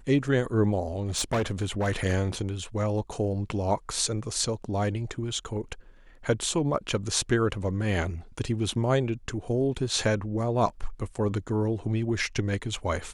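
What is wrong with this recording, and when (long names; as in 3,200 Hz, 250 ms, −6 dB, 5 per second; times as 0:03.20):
0:01.01–0:01.88: clipping −22 dBFS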